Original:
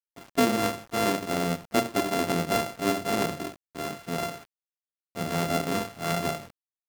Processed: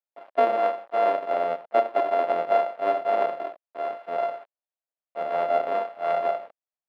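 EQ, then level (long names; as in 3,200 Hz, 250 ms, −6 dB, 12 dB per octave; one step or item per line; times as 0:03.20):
high-pass with resonance 620 Hz, resonance Q 3.4
high-frequency loss of the air 480 metres
0.0 dB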